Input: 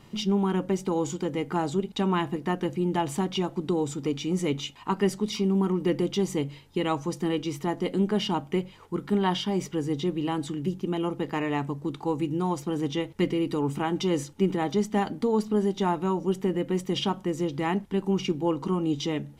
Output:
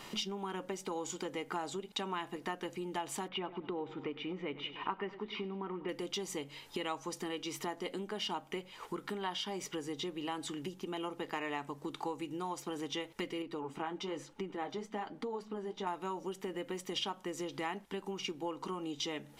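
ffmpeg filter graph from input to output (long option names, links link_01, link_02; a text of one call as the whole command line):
ffmpeg -i in.wav -filter_complex "[0:a]asettb=1/sr,asplit=3[link_01][link_02][link_03];[link_01]atrim=end=3.284[link_04];[link_02]atrim=start=3.28:end=5.89,asetpts=PTS-STARTPTS,afade=type=in:duration=0.004:curve=qsin,afade=type=out:start_time=2.606:duration=0.004:curve=qsin,lowpass=frequency=2700:width=0.5412,lowpass=frequency=2700:width=1.3066,aecho=1:1:100|200|300|400|500:0.141|0.0735|0.0382|0.0199|0.0103,atrim=end_sample=115101[link_05];[link_03]atrim=start=5.886[link_06];[link_04][link_05]acrossfade=duration=0.004:curve1=hsin:curve2=qsin[link_07];[link_07][link_06]acrossfade=duration=0.004:curve1=qsin:curve2=hsin,asettb=1/sr,asplit=3[link_08][link_09][link_10];[link_08]atrim=end=13.424[link_11];[link_09]atrim=start=13.42:end=15.87,asetpts=PTS-STARTPTS,afade=type=in:duration=0.004:curve=qsin,afade=type=out:start_time=2.446:duration=0.004:curve=qsin,lowpass=frequency=2000:poles=1,flanger=delay=3.6:depth=10:regen=-43:speed=1.1:shape=triangular[link_12];[link_10]atrim=start=15.866[link_13];[link_11][link_12]acrossfade=duration=0.004:curve1=hsin:curve2=qsin[link_14];[link_14][link_13]acrossfade=duration=0.004:curve1=qsin:curve2=hsin,lowshelf=frequency=410:gain=-8.5,acompressor=threshold=-44dB:ratio=6,equalizer=frequency=81:width=0.42:gain=-11.5,volume=9.5dB" out.wav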